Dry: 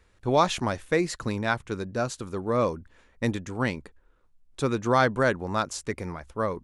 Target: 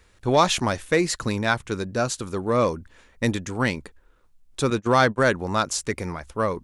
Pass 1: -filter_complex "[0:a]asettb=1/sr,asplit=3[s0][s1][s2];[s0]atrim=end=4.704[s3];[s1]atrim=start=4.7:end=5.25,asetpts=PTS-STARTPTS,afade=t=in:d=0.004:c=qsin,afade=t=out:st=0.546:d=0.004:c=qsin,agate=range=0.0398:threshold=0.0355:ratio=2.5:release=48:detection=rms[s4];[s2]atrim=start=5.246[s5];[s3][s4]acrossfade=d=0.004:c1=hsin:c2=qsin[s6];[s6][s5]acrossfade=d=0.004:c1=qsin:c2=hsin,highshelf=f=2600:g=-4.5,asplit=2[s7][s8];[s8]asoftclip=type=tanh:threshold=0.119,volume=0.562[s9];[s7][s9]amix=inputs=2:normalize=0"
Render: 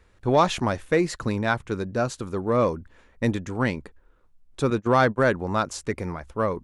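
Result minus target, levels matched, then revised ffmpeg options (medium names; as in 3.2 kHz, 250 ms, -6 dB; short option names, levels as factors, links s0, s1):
4 kHz band -5.5 dB
-filter_complex "[0:a]asettb=1/sr,asplit=3[s0][s1][s2];[s0]atrim=end=4.704[s3];[s1]atrim=start=4.7:end=5.25,asetpts=PTS-STARTPTS,afade=t=in:d=0.004:c=qsin,afade=t=out:st=0.546:d=0.004:c=qsin,agate=range=0.0398:threshold=0.0355:ratio=2.5:release=48:detection=rms[s4];[s2]atrim=start=5.246[s5];[s3][s4]acrossfade=d=0.004:c1=hsin:c2=qsin[s6];[s6][s5]acrossfade=d=0.004:c1=qsin:c2=hsin,highshelf=f=2600:g=5.5,asplit=2[s7][s8];[s8]asoftclip=type=tanh:threshold=0.119,volume=0.562[s9];[s7][s9]amix=inputs=2:normalize=0"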